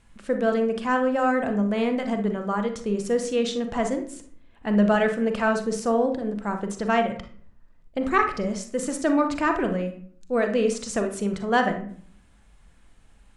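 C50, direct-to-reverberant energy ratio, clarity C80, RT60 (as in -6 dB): 8.5 dB, 5.0 dB, 14.0 dB, 0.55 s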